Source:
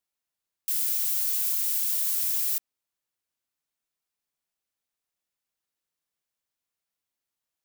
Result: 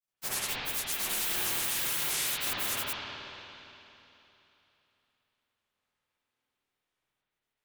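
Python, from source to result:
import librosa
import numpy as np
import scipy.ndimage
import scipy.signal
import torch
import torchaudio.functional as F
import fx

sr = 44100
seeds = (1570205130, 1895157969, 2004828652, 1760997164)

y = fx.granulator(x, sr, seeds[0], grain_ms=100.0, per_s=28.0, spray_ms=559.0, spread_st=12)
y = fx.rev_spring(y, sr, rt60_s=3.2, pass_ms=(49, 57), chirp_ms=55, drr_db=-9.5)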